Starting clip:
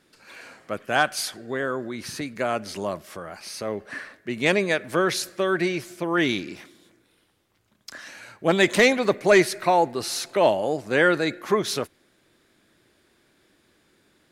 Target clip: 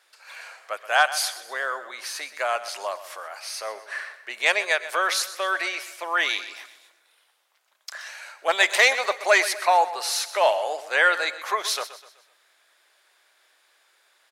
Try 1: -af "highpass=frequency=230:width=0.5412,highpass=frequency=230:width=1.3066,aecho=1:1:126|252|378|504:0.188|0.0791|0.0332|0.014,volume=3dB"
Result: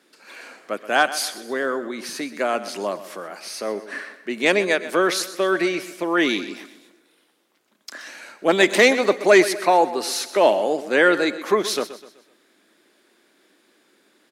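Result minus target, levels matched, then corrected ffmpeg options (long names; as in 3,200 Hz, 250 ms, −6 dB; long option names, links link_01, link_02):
250 Hz band +20.0 dB
-af "highpass=frequency=660:width=0.5412,highpass=frequency=660:width=1.3066,aecho=1:1:126|252|378|504:0.188|0.0791|0.0332|0.014,volume=3dB"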